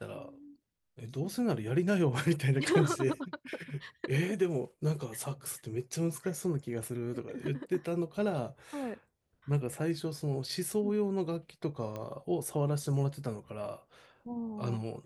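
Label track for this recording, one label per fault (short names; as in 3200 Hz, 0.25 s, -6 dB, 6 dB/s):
11.960000	11.960000	pop -26 dBFS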